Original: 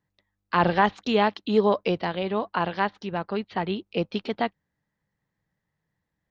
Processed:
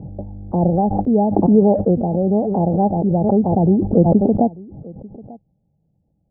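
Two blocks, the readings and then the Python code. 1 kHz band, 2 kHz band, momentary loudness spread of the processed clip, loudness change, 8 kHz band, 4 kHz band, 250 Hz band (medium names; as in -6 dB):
+3.0 dB, under -35 dB, 19 LU, +9.5 dB, no reading, under -40 dB, +14.0 dB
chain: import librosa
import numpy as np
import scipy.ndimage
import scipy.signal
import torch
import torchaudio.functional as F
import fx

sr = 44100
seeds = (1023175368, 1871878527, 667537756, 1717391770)

y = fx.low_shelf(x, sr, hz=350.0, db=9.5)
y = fx.rider(y, sr, range_db=10, speed_s=2.0)
y = scipy.signal.sosfilt(scipy.signal.cheby1(6, 3, 830.0, 'lowpass', fs=sr, output='sos'), y)
y = y + 10.0 ** (-22.0 / 20.0) * np.pad(y, (int(892 * sr / 1000.0), 0))[:len(y)]
y = fx.pre_swell(y, sr, db_per_s=27.0)
y = y * 10.0 ** (5.5 / 20.0)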